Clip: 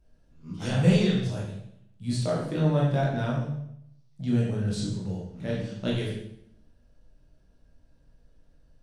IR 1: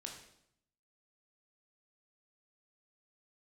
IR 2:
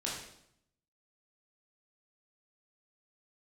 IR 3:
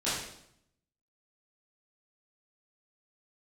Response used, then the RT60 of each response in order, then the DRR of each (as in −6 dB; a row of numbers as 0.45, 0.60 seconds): 2; 0.75, 0.75, 0.75 seconds; 1.0, −5.0, −12.5 decibels